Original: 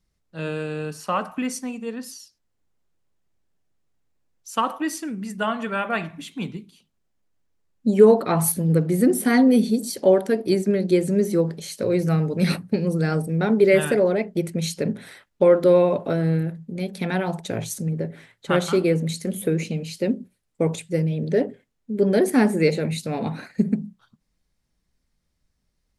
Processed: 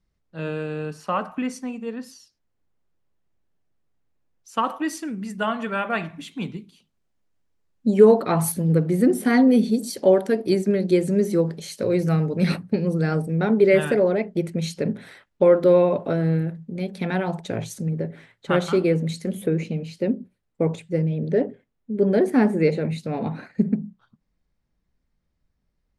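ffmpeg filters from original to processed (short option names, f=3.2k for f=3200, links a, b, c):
-af "asetnsamples=n=441:p=0,asendcmd='4.64 lowpass f 6900;8.73 lowpass f 4200;9.72 lowpass f 8300;12.26 lowpass f 3700;19.46 lowpass f 1800',lowpass=f=2.8k:p=1"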